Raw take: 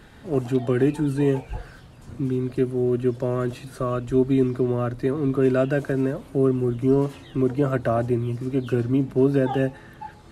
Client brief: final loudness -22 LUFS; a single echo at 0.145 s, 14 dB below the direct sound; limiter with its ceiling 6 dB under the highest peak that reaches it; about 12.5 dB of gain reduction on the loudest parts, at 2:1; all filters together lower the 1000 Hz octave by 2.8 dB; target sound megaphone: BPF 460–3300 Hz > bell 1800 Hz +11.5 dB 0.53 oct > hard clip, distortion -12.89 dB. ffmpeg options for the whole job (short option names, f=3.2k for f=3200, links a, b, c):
-af "equalizer=f=1k:t=o:g=-5.5,acompressor=threshold=-39dB:ratio=2,alimiter=level_in=2.5dB:limit=-24dB:level=0:latency=1,volume=-2.5dB,highpass=460,lowpass=3.3k,equalizer=f=1.8k:t=o:w=0.53:g=11.5,aecho=1:1:145:0.2,asoftclip=type=hard:threshold=-37.5dB,volume=22dB"